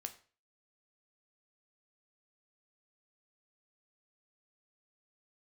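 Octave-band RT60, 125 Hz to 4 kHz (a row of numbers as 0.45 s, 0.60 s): 0.45 s, 0.40 s, 0.40 s, 0.40 s, 0.40 s, 0.35 s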